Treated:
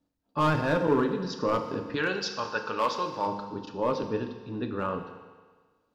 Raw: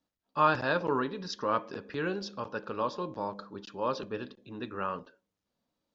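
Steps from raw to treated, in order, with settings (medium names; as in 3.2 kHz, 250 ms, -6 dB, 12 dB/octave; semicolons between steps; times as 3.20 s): overload inside the chain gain 23 dB; tilt shelf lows +5.5 dB, about 650 Hz, from 1.95 s lows -5.5 dB, from 3.26 s lows +5 dB; FDN reverb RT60 1.5 s, low-frequency decay 0.8×, high-frequency decay 1×, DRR 5.5 dB; trim +3.5 dB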